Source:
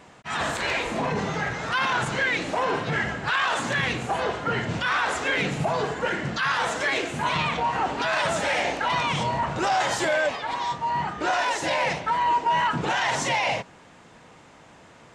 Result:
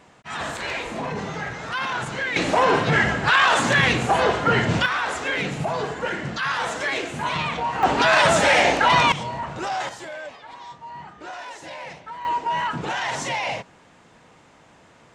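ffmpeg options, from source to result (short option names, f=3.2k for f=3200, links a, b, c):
-af "asetnsamples=n=441:p=0,asendcmd='2.36 volume volume 7dB;4.86 volume volume -0.5dB;7.83 volume volume 8dB;9.12 volume volume -4dB;9.89 volume volume -12dB;12.25 volume volume -2dB',volume=-2.5dB"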